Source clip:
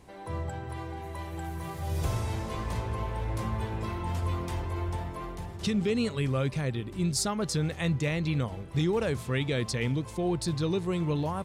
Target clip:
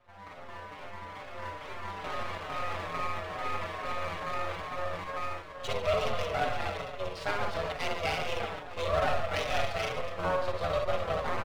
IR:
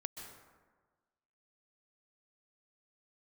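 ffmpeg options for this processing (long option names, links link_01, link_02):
-filter_complex "[0:a]aecho=1:1:60|144|261.6|426.2|656.7:0.631|0.398|0.251|0.158|0.1,adynamicsmooth=sensitivity=7.5:basefreq=2900,tremolo=f=90:d=0.824,dynaudnorm=framelen=400:gausssize=5:maxgain=5.5dB,asplit=2[link_01][link_02];[1:a]atrim=start_sample=2205,adelay=17[link_03];[link_02][link_03]afir=irnorm=-1:irlink=0,volume=-12dB[link_04];[link_01][link_04]amix=inputs=2:normalize=0,highpass=frequency=310:width_type=q:width=0.5412,highpass=frequency=310:width_type=q:width=1.307,lowpass=frequency=3500:width_type=q:width=0.5176,lowpass=frequency=3500:width_type=q:width=0.7071,lowpass=frequency=3500:width_type=q:width=1.932,afreqshift=200,aeval=exprs='max(val(0),0)':channel_layout=same,asplit=2[link_05][link_06];[link_06]adelay=5.1,afreqshift=-2.3[link_07];[link_05][link_07]amix=inputs=2:normalize=1,volume=5.5dB"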